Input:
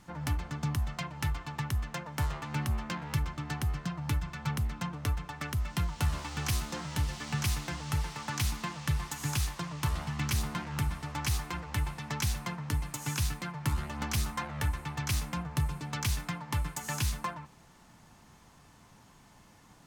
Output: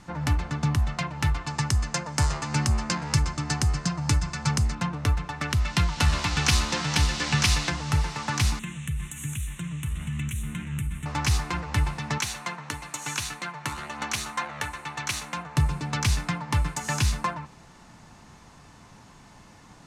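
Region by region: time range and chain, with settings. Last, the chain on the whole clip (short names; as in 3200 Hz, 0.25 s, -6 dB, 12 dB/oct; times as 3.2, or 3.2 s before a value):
1.47–4.75 band shelf 6500 Hz +11 dB 1.2 oct + notch 5600 Hz, Q 24
5.5–7.7 bell 3800 Hz +6.5 dB 2.4 oct + echo 0.474 s -6.5 dB
8.59–11.06 EQ curve 190 Hz 0 dB, 770 Hz -21 dB, 3700 Hz +7 dB + compressor 4:1, threshold -33 dBFS + Butterworth band-stop 4800 Hz, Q 0.87
12.18–15.57 HPF 630 Hz 6 dB/oct + notch 5000 Hz, Q 9.1
whole clip: LPF 8600 Hz 12 dB/oct; notch 3200 Hz, Q 21; gain +7.5 dB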